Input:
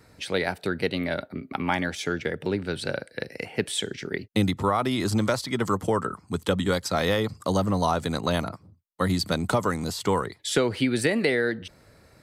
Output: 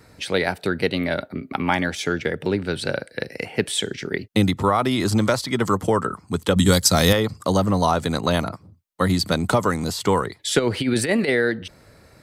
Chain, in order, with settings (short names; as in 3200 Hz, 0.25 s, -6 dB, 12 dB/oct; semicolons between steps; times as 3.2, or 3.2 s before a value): 6.56–7.13 tone controls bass +8 dB, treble +14 dB; 10.59–11.29 negative-ratio compressor -24 dBFS, ratio -0.5; gain +4.5 dB